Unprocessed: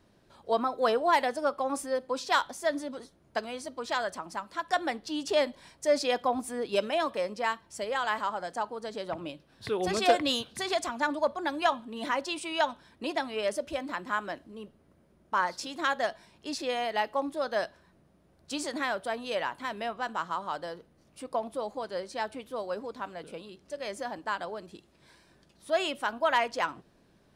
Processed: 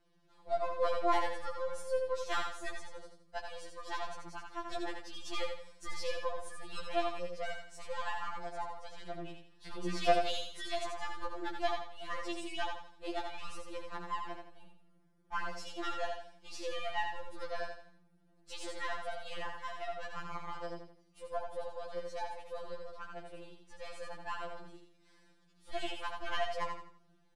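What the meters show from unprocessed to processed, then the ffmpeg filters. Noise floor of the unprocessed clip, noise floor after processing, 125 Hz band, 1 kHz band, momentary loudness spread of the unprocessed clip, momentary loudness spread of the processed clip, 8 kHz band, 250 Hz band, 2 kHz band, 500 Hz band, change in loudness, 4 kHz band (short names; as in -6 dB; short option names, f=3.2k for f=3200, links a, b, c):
-64 dBFS, -67 dBFS, -3.0 dB, -8.0 dB, 12 LU, 13 LU, -9.5 dB, -11.0 dB, -9.0 dB, -8.5 dB, -8.5 dB, -8.0 dB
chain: -af "aeval=exprs='if(lt(val(0),0),0.447*val(0),val(0))':c=same,lowpass=9.7k,aecho=1:1:83|166|249|332:0.562|0.197|0.0689|0.0241,afftfilt=real='re*2.83*eq(mod(b,8),0)':imag='im*2.83*eq(mod(b,8),0)':win_size=2048:overlap=0.75,volume=-5dB"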